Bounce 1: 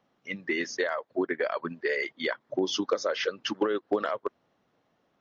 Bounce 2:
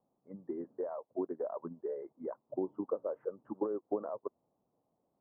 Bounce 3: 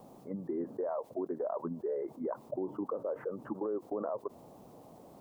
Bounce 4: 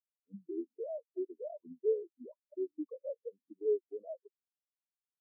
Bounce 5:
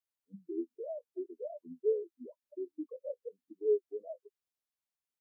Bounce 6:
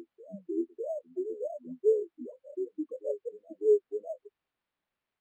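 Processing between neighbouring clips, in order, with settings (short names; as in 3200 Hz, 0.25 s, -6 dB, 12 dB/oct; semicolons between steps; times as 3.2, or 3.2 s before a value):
steep low-pass 1000 Hz 36 dB/oct; gain -7.5 dB
limiter -32.5 dBFS, peak gain reduction 10.5 dB; fast leveller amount 50%; gain +4.5 dB
spectral expander 4:1; gain +2 dB
doubler 12 ms -9 dB
reverse echo 0.602 s -15 dB; decimation joined by straight lines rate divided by 6×; gain +5.5 dB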